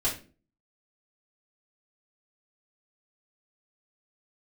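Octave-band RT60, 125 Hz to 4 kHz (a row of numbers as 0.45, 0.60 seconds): 0.50, 0.50, 0.45, 0.30, 0.30, 0.30 seconds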